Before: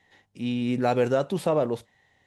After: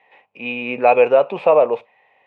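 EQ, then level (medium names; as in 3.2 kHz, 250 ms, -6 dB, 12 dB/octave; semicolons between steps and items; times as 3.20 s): high-pass 200 Hz 12 dB/octave; resonant low-pass 2.5 kHz, resonance Q 13; high-order bell 720 Hz +13.5 dB; -2.5 dB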